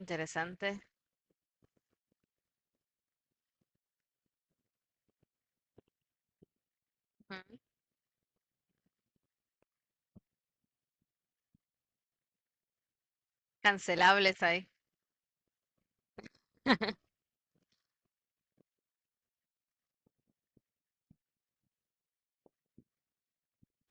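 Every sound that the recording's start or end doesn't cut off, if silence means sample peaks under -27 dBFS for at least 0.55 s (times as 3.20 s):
13.65–14.56 s
16.67–16.89 s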